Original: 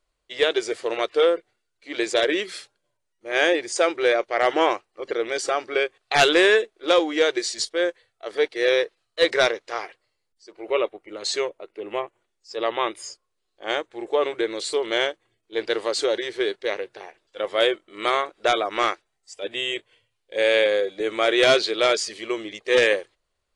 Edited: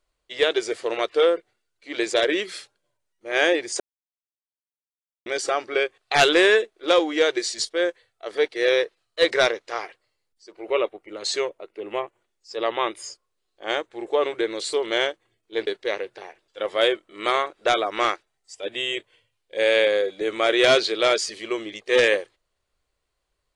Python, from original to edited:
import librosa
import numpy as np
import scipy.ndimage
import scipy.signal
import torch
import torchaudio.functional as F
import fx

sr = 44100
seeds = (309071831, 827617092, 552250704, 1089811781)

y = fx.edit(x, sr, fx.silence(start_s=3.8, length_s=1.46),
    fx.cut(start_s=15.67, length_s=0.79), tone=tone)